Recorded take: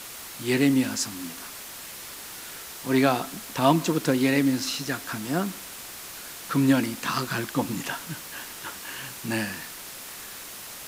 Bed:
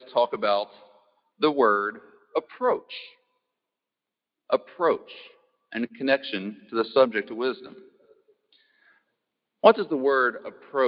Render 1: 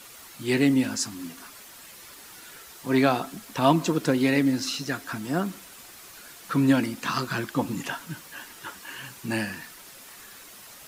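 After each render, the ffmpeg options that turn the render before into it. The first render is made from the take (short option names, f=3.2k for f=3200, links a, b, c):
-af "afftdn=nr=8:nf=-40"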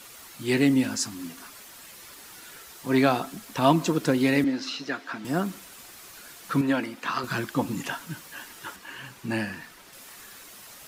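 -filter_complex "[0:a]asettb=1/sr,asplit=3[a][b][c];[a]atrim=end=4.444[d];[b]atrim=start=4.44:end=5.25,asetpts=PTS-STARTPTS,afade=t=in:d=0.004:c=qsin,afade=t=out:st=0.806:d=0.004:c=qsin,acrossover=split=210 5100:gain=0.1 1 0.112[e][f][g];[e][f][g]amix=inputs=3:normalize=0[h];[c]atrim=start=5.246[i];[d][h]acrossfade=d=0.004:c1=hsin:c2=qsin[j];[j][i]acrossfade=d=0.004:c1=qsin:c2=hsin,asettb=1/sr,asplit=3[k][l][m];[k]atrim=end=6.614[n];[l]atrim=start=6.61:end=7.24,asetpts=PTS-STARTPTS,afade=t=in:d=0.004:c=qsin,afade=t=out:st=0.626:d=0.004:c=qsin,bass=f=250:g=-12,treble=f=4k:g=-9[o];[m]atrim=start=7.236[p];[n][o]acrossfade=d=0.004:c1=hsin:c2=qsin[q];[q][p]acrossfade=d=0.004:c1=qsin:c2=hsin,asettb=1/sr,asplit=3[r][s][t];[r]atrim=end=8.764[u];[s]atrim=start=8.76:end=9.93,asetpts=PTS-STARTPTS,afade=t=in:d=0.004:c=qsin,afade=t=out:st=1.166:d=0.004:c=qsin,highshelf=f=4.9k:g=-8.5[v];[t]atrim=start=9.926[w];[u][v]acrossfade=d=0.004:c1=hsin:c2=qsin[x];[x][w]acrossfade=d=0.004:c1=qsin:c2=hsin"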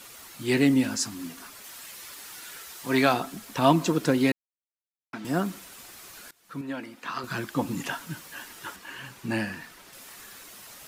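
-filter_complex "[0:a]asettb=1/sr,asplit=3[a][b][c];[a]atrim=end=1.644[d];[b]atrim=start=1.64:end=3.14,asetpts=PTS-STARTPTS,afade=t=in:d=0.004:c=qsin,afade=t=out:st=1.496:d=0.004:c=qsin,tiltshelf=f=710:g=-3.5[e];[c]atrim=start=3.136[f];[d][e]acrossfade=d=0.004:c1=hsin:c2=qsin[g];[g][f]acrossfade=d=0.004:c1=qsin:c2=hsin,asplit=4[h][i][j][k];[h]atrim=end=4.32,asetpts=PTS-STARTPTS,afade=t=out:st=4.316:d=0.004:c=hsin[l];[i]atrim=start=4.32:end=5.13,asetpts=PTS-STARTPTS,volume=0[m];[j]atrim=start=5.13:end=6.31,asetpts=PTS-STARTPTS,afade=t=in:d=0.004:c=hsin,afade=t=out:st=1.176:d=0.004:c=hsin:silence=0.0794328[n];[k]atrim=start=6.31,asetpts=PTS-STARTPTS,afade=t=in:d=1.52:silence=0.0794328[o];[l][m][n][o]concat=n=4:v=0:a=1"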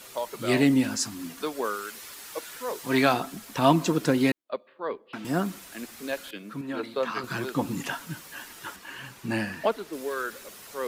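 -filter_complex "[1:a]volume=-10dB[a];[0:a][a]amix=inputs=2:normalize=0"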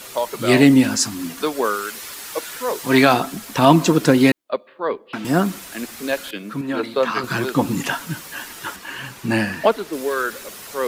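-af "volume=9dB,alimiter=limit=-1dB:level=0:latency=1"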